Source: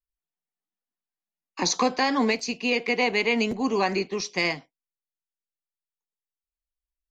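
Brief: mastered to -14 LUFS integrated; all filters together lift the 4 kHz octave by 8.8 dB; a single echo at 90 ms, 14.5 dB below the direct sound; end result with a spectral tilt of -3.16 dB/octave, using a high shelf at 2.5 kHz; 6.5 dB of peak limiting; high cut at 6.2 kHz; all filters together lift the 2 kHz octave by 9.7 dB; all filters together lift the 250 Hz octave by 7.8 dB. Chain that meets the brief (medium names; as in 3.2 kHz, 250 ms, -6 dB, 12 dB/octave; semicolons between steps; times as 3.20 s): low-pass 6.2 kHz; peaking EQ 250 Hz +8.5 dB; peaking EQ 2 kHz +7.5 dB; treble shelf 2.5 kHz +3.5 dB; peaking EQ 4 kHz +6.5 dB; peak limiter -9 dBFS; delay 90 ms -14.5 dB; trim +5.5 dB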